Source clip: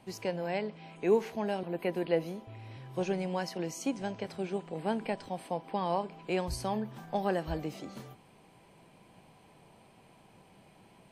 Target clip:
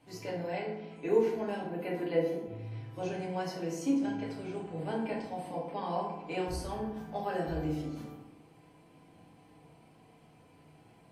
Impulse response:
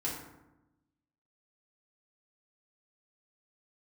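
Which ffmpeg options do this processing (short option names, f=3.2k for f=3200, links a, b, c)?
-filter_complex "[1:a]atrim=start_sample=2205[a];[0:a][a]afir=irnorm=-1:irlink=0,asettb=1/sr,asplit=3[b][c][d];[b]atrim=end=4.334[e];[c]atrim=start=4.33:end=4.93,asetpts=PTS-STARTPTS,afade=t=in:d=0.004:c=qsin,afade=t=out:st=0.596:d=0.004:c=qsin,asubboost=boost=9:cutoff=180[f];[d]atrim=start=4.926[g];[e][f]acrossfade=d=0.004:c1=hsin:c2=qsin[h];[h][g]acrossfade=d=0.004:c1=qsin:c2=hsin,bandreject=f=890:w=17,volume=-5.5dB"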